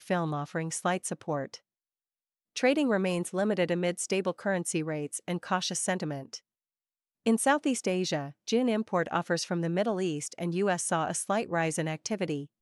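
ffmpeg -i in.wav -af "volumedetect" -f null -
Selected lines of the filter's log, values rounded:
mean_volume: -30.4 dB
max_volume: -11.7 dB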